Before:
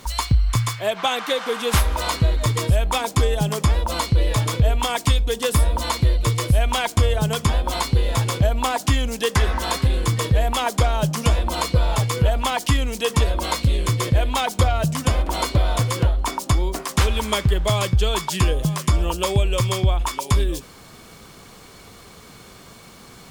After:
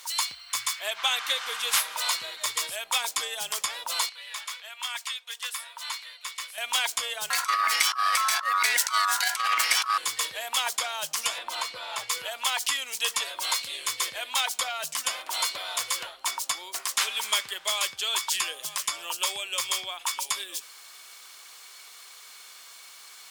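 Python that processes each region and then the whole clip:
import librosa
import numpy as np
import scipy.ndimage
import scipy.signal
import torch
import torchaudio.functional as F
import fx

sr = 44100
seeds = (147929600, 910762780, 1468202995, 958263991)

y = fx.chain(x, sr, fx.highpass(hz=1300.0, slope=12),
    fx.high_shelf(hz=3100.0, db=-11.0), at=(4.09, 6.58))
y = fx.chain(y, sr, fx.transient(attack_db=7, sustain_db=11),
    fx.over_compress(threshold_db=-16.0, ratio=-0.5),
    fx.ring_mod(carrier_hz=1200.0), at=(7.3, 9.98))
y = fx.chain(y, sr, fx.high_shelf(hz=4400.0, db=-11.0),
    fx.band_squash(depth_pct=40), at=(11.38, 12.1))
y = scipy.signal.sosfilt(scipy.signal.butter(2, 850.0, 'highpass', fs=sr, output='sos'), y)
y = fx.tilt_shelf(y, sr, db=-6.5, hz=1300.0)
y = F.gain(torch.from_numpy(y), -4.5).numpy()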